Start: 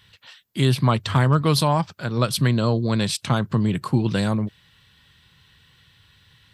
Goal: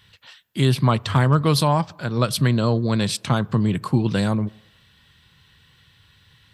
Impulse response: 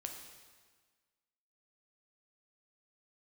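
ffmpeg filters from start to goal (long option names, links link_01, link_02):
-filter_complex "[0:a]asplit=2[link_01][link_02];[1:a]atrim=start_sample=2205,asetrate=61740,aresample=44100,lowpass=2100[link_03];[link_02][link_03]afir=irnorm=-1:irlink=0,volume=-12.5dB[link_04];[link_01][link_04]amix=inputs=2:normalize=0"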